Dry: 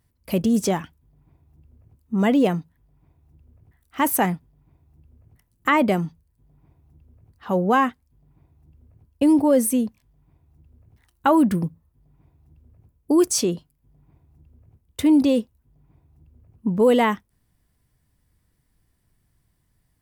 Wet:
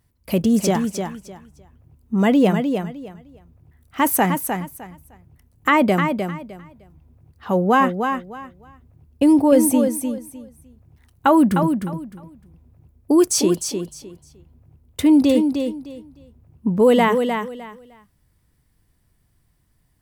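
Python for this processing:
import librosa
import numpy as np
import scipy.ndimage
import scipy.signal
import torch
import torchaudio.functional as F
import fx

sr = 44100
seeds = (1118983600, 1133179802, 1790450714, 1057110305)

y = fx.echo_feedback(x, sr, ms=305, feedback_pct=22, wet_db=-6.5)
y = y * librosa.db_to_amplitude(2.5)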